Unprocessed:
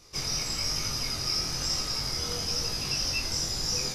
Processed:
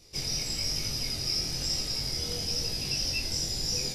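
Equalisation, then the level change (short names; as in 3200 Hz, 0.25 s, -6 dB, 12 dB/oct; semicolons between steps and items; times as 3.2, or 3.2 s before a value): bell 1200 Hz -12.5 dB 0.93 oct; notch 6300 Hz, Q 9.8; 0.0 dB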